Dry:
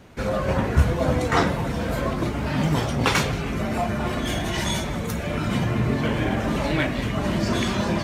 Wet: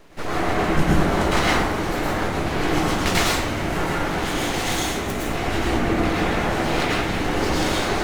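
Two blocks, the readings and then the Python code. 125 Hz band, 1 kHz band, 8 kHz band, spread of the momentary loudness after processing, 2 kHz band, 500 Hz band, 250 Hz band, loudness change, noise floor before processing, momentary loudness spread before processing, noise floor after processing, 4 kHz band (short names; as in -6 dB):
-2.5 dB, +4.5 dB, +5.0 dB, 5 LU, +4.0 dB, +2.0 dB, +1.0 dB, +2.0 dB, -28 dBFS, 5 LU, -26 dBFS, +4.0 dB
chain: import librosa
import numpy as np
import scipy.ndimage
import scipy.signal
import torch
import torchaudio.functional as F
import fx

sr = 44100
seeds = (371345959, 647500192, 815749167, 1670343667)

y = np.abs(x)
y = fx.rev_plate(y, sr, seeds[0], rt60_s=0.65, hf_ratio=0.7, predelay_ms=95, drr_db=-4.5)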